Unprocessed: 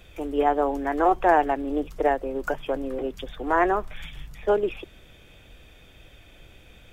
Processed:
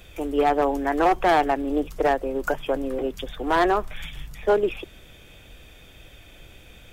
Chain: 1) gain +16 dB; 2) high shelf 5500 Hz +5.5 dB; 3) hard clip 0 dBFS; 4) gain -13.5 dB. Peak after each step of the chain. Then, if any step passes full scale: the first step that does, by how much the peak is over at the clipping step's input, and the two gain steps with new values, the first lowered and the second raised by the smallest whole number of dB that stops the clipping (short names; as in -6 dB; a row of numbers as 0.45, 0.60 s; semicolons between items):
+8.5, +9.0, 0.0, -13.5 dBFS; step 1, 9.0 dB; step 1 +7 dB, step 4 -4.5 dB